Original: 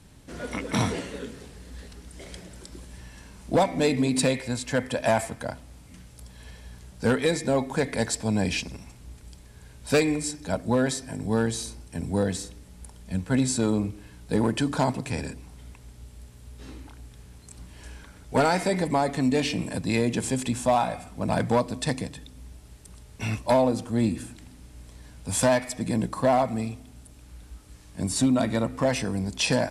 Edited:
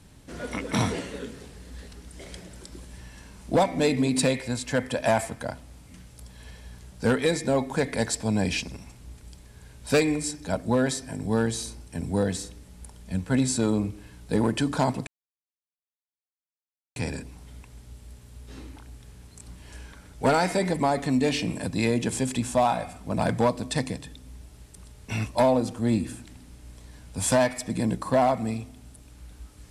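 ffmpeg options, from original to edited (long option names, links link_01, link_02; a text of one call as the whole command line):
ffmpeg -i in.wav -filter_complex "[0:a]asplit=2[link_01][link_02];[link_01]atrim=end=15.07,asetpts=PTS-STARTPTS,afade=type=out:start_time=15.066:duration=0.004:curve=hsin,apad=pad_dur=1.89[link_03];[link_02]atrim=start=15.07,asetpts=PTS-STARTPTS,afade=type=in:duration=0.004:curve=hsin[link_04];[link_03][link_04]concat=n=2:v=0:a=1" out.wav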